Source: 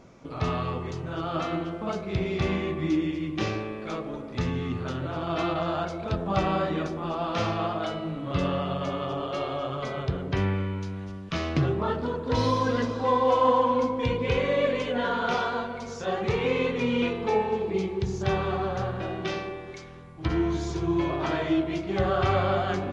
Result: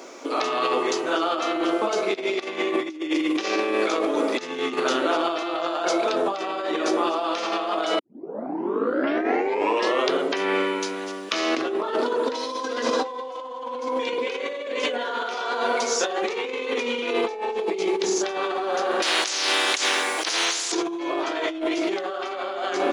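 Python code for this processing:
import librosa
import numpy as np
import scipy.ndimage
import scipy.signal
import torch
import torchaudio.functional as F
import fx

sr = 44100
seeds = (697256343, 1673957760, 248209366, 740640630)

y = fx.over_compress(x, sr, threshold_db=-33.0, ratio=-0.5, at=(2.1, 4.8))
y = fx.spectral_comp(y, sr, ratio=10.0, at=(19.02, 20.72))
y = fx.edit(y, sr, fx.tape_start(start_s=7.99, length_s=2.17), tone=tone)
y = scipy.signal.sosfilt(scipy.signal.butter(6, 290.0, 'highpass', fs=sr, output='sos'), y)
y = fx.high_shelf(y, sr, hz=5100.0, db=11.5)
y = fx.over_compress(y, sr, threshold_db=-34.0, ratio=-1.0)
y = y * 10.0 ** (8.5 / 20.0)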